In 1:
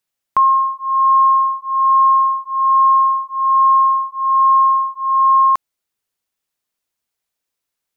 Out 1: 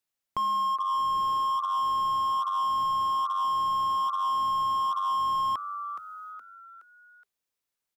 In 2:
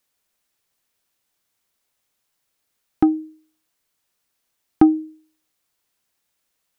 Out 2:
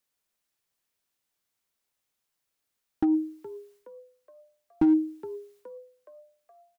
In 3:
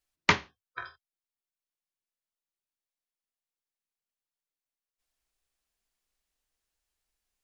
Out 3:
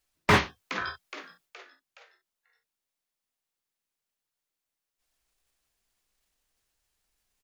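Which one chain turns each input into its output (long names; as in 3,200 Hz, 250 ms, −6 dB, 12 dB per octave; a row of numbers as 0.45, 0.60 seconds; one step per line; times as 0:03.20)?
transient designer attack −2 dB, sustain +11 dB
echo with shifted repeats 419 ms, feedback 46%, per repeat +95 Hz, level −18 dB
slew-rate limiting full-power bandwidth 120 Hz
loudness normalisation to −27 LKFS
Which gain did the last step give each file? −6.5, −7.5, +5.5 decibels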